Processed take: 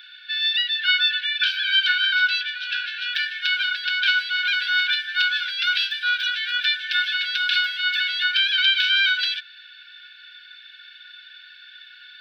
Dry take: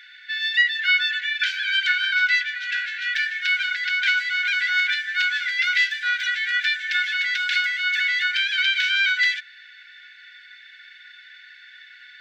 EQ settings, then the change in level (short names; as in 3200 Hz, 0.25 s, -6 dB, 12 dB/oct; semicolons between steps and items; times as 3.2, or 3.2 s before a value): bell 1500 Hz -2 dB 0.22 oct; fixed phaser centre 2000 Hz, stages 6; +5.5 dB